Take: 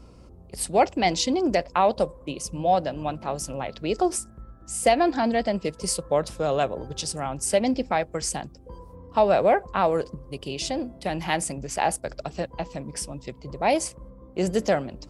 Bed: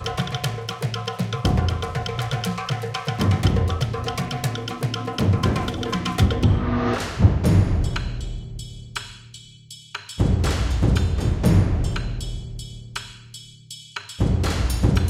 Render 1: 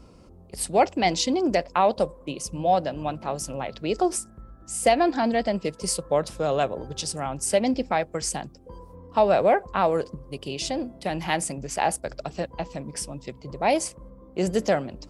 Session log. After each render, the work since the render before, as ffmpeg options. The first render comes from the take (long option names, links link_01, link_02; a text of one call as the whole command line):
ffmpeg -i in.wav -af "bandreject=frequency=60:width_type=h:width=4,bandreject=frequency=120:width_type=h:width=4" out.wav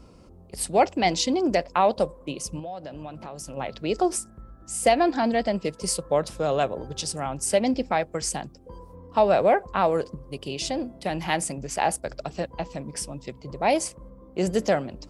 ffmpeg -i in.wav -filter_complex "[0:a]asettb=1/sr,asplit=3[link_01][link_02][link_03];[link_01]atrim=end=2.594[link_04];[link_02]atrim=start=2.59:end=3.57,asetpts=PTS-STARTPTS,afade=type=in:duration=0.004:curve=qsin,afade=type=out:start_time=0.976:duration=0.004:curve=qsin,acompressor=threshold=-34dB:ratio=5:attack=3.2:release=140:knee=1:detection=peak[link_05];[link_03]atrim=start=3.566[link_06];[link_04][link_05]acrossfade=duration=0.004:curve1=hsin:curve2=qsin[link_07];[link_07][link_06]acrossfade=duration=0.004:curve1=qsin:curve2=hsin" out.wav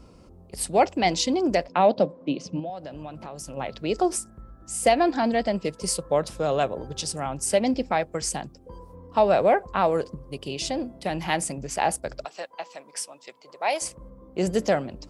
ffmpeg -i in.wav -filter_complex "[0:a]asettb=1/sr,asplit=3[link_01][link_02][link_03];[link_01]atrim=end=1.684[link_04];[link_02]atrim=start=1.68:end=2.7,asetpts=PTS-STARTPTS,afade=type=in:duration=0.004:curve=qsin,afade=type=out:start_time=1.016:duration=0.004:curve=qsin,highpass=frequency=110:width=0.5412,highpass=frequency=110:width=1.3066,equalizer=frequency=180:width_type=q:width=4:gain=5,equalizer=frequency=280:width_type=q:width=4:gain=9,equalizer=frequency=650:width_type=q:width=4:gain=4,equalizer=frequency=1100:width_type=q:width=4:gain=-5,lowpass=frequency=5000:width=0.5412,lowpass=frequency=5000:width=1.3066[link_05];[link_03]atrim=start=2.696[link_06];[link_04][link_05]acrossfade=duration=0.004:curve1=hsin:curve2=qsin[link_07];[link_07][link_06]acrossfade=duration=0.004:curve1=qsin:curve2=hsin,asettb=1/sr,asplit=3[link_08][link_09][link_10];[link_08]atrim=end=12.254[link_11];[link_09]atrim=start=12.25:end=13.82,asetpts=PTS-STARTPTS,afade=type=in:duration=0.004:curve=qsin,afade=type=out:start_time=1.566:duration=0.004:curve=qsin,highpass=710[link_12];[link_10]atrim=start=13.816[link_13];[link_11][link_12]acrossfade=duration=0.004:curve1=hsin:curve2=qsin[link_14];[link_14][link_13]acrossfade=duration=0.004:curve1=qsin:curve2=hsin" out.wav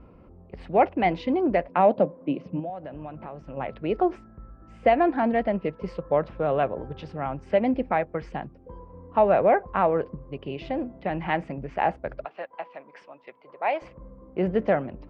ffmpeg -i in.wav -af "lowpass=frequency=2400:width=0.5412,lowpass=frequency=2400:width=1.3066" out.wav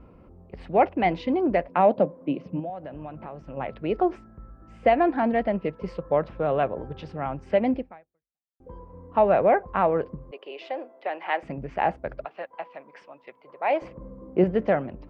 ffmpeg -i in.wav -filter_complex "[0:a]asettb=1/sr,asplit=3[link_01][link_02][link_03];[link_01]atrim=end=10.314[link_04];[link_02]atrim=start=10.31:end=11.43,asetpts=PTS-STARTPTS,afade=type=in:duration=0.004:curve=qsin,afade=type=out:start_time=1.116:duration=0.004:curve=qsin,highpass=frequency=430:width=0.5412,highpass=frequency=430:width=1.3066[link_05];[link_03]atrim=start=11.426[link_06];[link_04][link_05]acrossfade=duration=0.004:curve1=hsin:curve2=qsin[link_07];[link_07][link_06]acrossfade=duration=0.004:curve1=qsin:curve2=hsin,asettb=1/sr,asplit=3[link_08][link_09][link_10];[link_08]atrim=end=13.704[link_11];[link_09]atrim=start=13.7:end=14.44,asetpts=PTS-STARTPTS,afade=type=in:duration=0.004:curve=qsin,afade=type=out:start_time=0.736:duration=0.004:curve=qsin,equalizer=frequency=300:width_type=o:width=2.6:gain=7[link_12];[link_10]atrim=start=14.436[link_13];[link_11][link_12]acrossfade=duration=0.004:curve1=hsin:curve2=qsin[link_14];[link_14][link_13]acrossfade=duration=0.004:curve1=qsin:curve2=hsin,asplit=2[link_15][link_16];[link_15]atrim=end=8.6,asetpts=PTS-STARTPTS,afade=type=out:start_time=7.76:duration=0.84:curve=exp[link_17];[link_16]atrim=start=8.6,asetpts=PTS-STARTPTS,afade=type=in:duration=0.004:curve=hsin[link_18];[link_17][link_18]concat=n=2:v=0:a=1" out.wav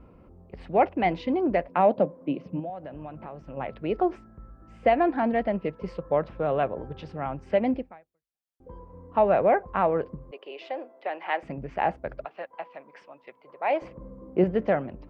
ffmpeg -i in.wav -af "volume=-1.5dB" out.wav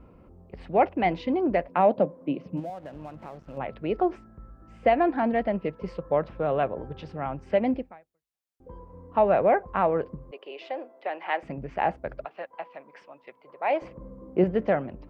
ffmpeg -i in.wav -filter_complex "[0:a]asettb=1/sr,asplit=3[link_01][link_02][link_03];[link_01]atrim=end=2.574[link_04];[link_02]atrim=start=2.57:end=3.58,asetpts=PTS-STARTPTS,afade=type=in:duration=0.004:curve=qsin,afade=type=out:start_time=1.006:duration=0.004:curve=qsin,aeval=exprs='sgn(val(0))*max(abs(val(0))-0.002,0)':channel_layout=same[link_05];[link_03]atrim=start=3.576[link_06];[link_04][link_05]acrossfade=duration=0.004:curve1=hsin:curve2=qsin[link_07];[link_07][link_06]acrossfade=duration=0.004:curve1=qsin:curve2=hsin" out.wav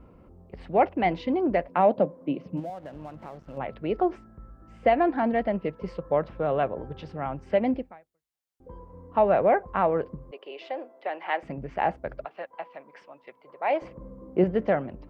ffmpeg -i in.wav -af "bandreject=frequency=2500:width=28" out.wav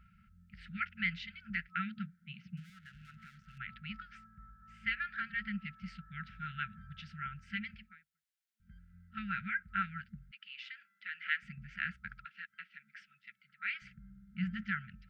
ffmpeg -i in.wav -af "afftfilt=real='re*(1-between(b*sr/4096,220,1300))':imag='im*(1-between(b*sr/4096,220,1300))':win_size=4096:overlap=0.75,bass=frequency=250:gain=-11,treble=frequency=4000:gain=-4" out.wav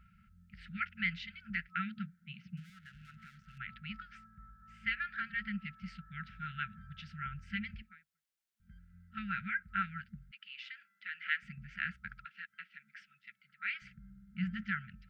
ffmpeg -i in.wav -filter_complex "[0:a]asettb=1/sr,asplit=3[link_01][link_02][link_03];[link_01]atrim=end=6.994[link_04];[link_02]atrim=start=6.99:end=7.82,asetpts=PTS-STARTPTS,afade=type=in:duration=0.004:curve=qsin,afade=type=out:start_time=0.826:duration=0.004:curve=qsin,asubboost=boost=9:cutoff=200[link_05];[link_03]atrim=start=7.816[link_06];[link_04][link_05]acrossfade=duration=0.004:curve1=hsin:curve2=qsin[link_07];[link_07][link_06]acrossfade=duration=0.004:curve1=qsin:curve2=hsin" out.wav